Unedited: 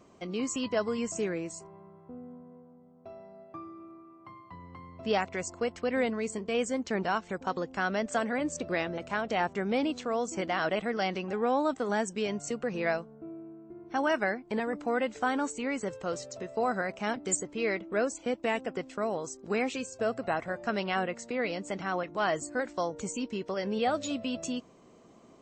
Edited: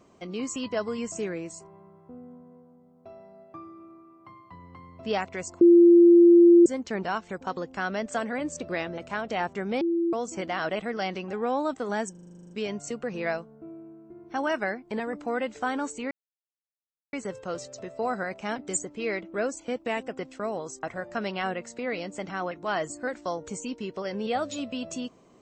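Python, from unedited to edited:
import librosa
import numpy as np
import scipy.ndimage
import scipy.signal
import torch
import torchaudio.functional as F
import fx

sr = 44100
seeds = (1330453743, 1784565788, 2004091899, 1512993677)

y = fx.edit(x, sr, fx.bleep(start_s=5.61, length_s=1.05, hz=344.0, db=-11.0),
    fx.bleep(start_s=9.81, length_s=0.32, hz=338.0, db=-22.0),
    fx.stutter(start_s=12.11, slice_s=0.04, count=11),
    fx.insert_silence(at_s=15.71, length_s=1.02),
    fx.cut(start_s=19.41, length_s=0.94), tone=tone)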